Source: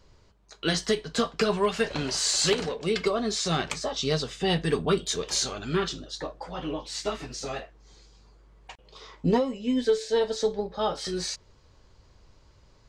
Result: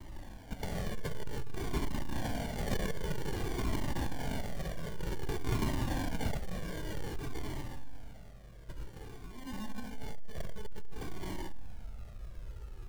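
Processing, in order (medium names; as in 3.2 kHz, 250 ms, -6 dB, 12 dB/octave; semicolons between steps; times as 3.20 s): comb filter that takes the minimum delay 0.75 ms; bass shelf 110 Hz +6.5 dB; bit crusher 10-bit; compressor with a negative ratio -36 dBFS, ratio -1; algorithmic reverb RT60 0.94 s, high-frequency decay 0.85×, pre-delay 45 ms, DRR 0 dB; saturation -30.5 dBFS, distortion -10 dB; peaking EQ 1.4 kHz +12.5 dB 2 oct, from 6.37 s -3 dB, from 7.61 s -9.5 dB; sample-and-hold 34×; band-stop 990 Hz, Q 22; Shepard-style flanger falling 0.53 Hz; trim +1.5 dB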